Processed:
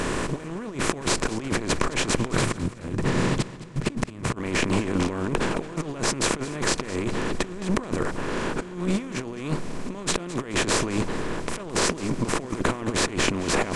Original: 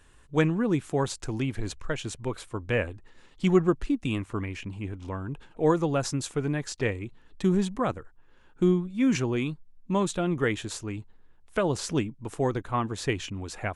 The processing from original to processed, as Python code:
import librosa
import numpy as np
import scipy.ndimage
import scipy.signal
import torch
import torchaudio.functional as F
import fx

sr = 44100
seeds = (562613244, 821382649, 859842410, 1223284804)

y = fx.bin_compress(x, sr, power=0.4)
y = fx.peak_eq(y, sr, hz=130.0, db=14.0, octaves=1.1, at=(2.34, 4.36))
y = fx.over_compress(y, sr, threshold_db=-26.0, ratio=-0.5)
y = fx.echo_feedback(y, sr, ms=215, feedback_pct=42, wet_db=-16.5)